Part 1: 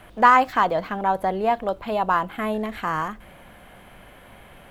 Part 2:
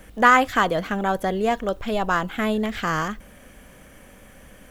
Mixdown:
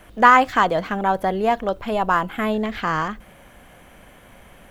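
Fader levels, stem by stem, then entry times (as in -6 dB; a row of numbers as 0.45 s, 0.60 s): -2.0 dB, -5.0 dB; 0.00 s, 0.00 s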